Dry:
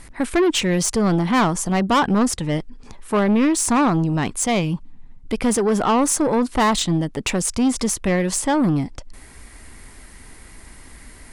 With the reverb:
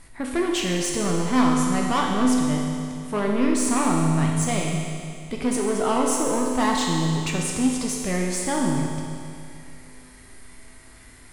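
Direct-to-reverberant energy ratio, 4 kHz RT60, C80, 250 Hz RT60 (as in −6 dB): −1.5 dB, 2.4 s, 2.5 dB, 2.4 s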